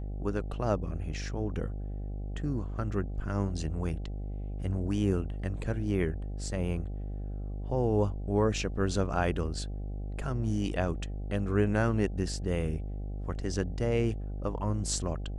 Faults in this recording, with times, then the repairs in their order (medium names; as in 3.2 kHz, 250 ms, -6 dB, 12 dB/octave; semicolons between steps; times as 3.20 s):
buzz 50 Hz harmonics 16 -36 dBFS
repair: de-hum 50 Hz, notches 16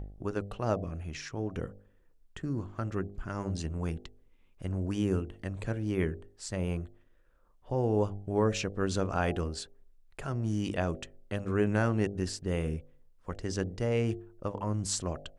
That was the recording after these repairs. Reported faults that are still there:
nothing left